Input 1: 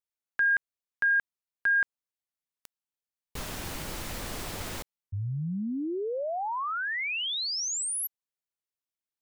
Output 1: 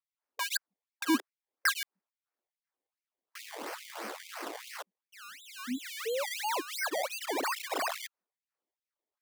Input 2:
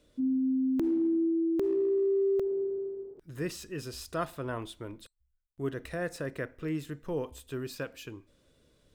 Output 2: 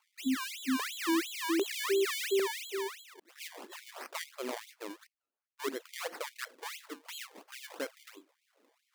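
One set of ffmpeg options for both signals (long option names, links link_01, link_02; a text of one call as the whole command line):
ffmpeg -i in.wav -af "acrusher=samples=23:mix=1:aa=0.000001:lfo=1:lforange=23:lforate=2.9,bandreject=frequency=60:width_type=h:width=6,bandreject=frequency=120:width_type=h:width=6,bandreject=frequency=180:width_type=h:width=6,afftfilt=real='re*gte(b*sr/1024,210*pow(2100/210,0.5+0.5*sin(2*PI*2.4*pts/sr)))':imag='im*gte(b*sr/1024,210*pow(2100/210,0.5+0.5*sin(2*PI*2.4*pts/sr)))':win_size=1024:overlap=0.75" out.wav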